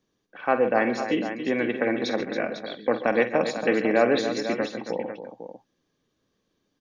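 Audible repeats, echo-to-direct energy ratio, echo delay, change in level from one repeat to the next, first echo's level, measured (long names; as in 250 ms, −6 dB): 4, −5.0 dB, 50 ms, repeats not evenly spaced, −11.5 dB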